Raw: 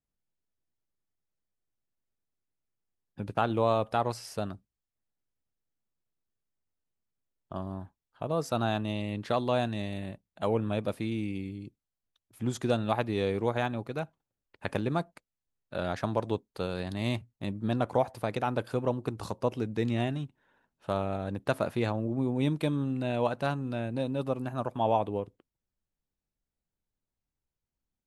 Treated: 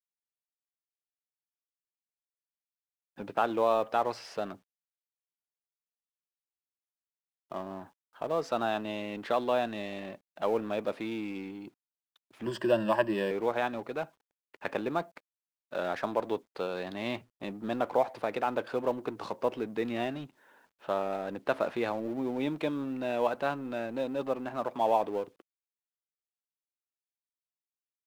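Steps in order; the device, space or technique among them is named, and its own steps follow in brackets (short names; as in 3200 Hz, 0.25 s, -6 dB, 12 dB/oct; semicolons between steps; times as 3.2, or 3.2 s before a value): phone line with mismatched companding (BPF 320–3300 Hz; G.711 law mismatch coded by mu); 12.45–13.31 ripple EQ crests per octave 1.3, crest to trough 15 dB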